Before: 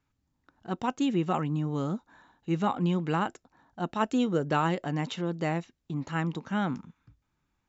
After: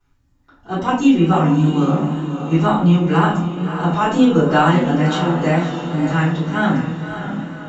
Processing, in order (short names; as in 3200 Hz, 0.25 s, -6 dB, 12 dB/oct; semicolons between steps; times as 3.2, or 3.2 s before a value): diffused feedback echo 0.599 s, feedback 50%, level -8 dB; shoebox room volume 52 m³, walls mixed, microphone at 3.2 m; wow and flutter 37 cents; gain -2.5 dB